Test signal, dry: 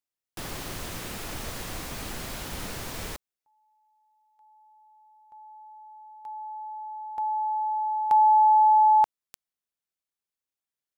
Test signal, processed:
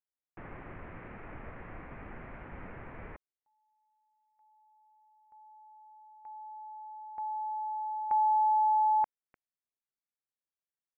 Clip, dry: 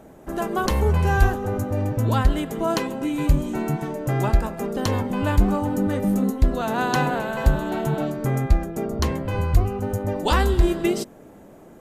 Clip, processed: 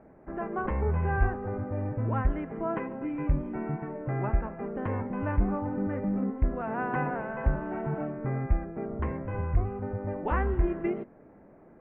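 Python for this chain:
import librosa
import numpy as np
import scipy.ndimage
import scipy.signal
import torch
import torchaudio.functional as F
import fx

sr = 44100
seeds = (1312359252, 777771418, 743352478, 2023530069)

y = scipy.signal.sosfilt(scipy.signal.butter(8, 2300.0, 'lowpass', fs=sr, output='sos'), x)
y = y * librosa.db_to_amplitude(-8.0)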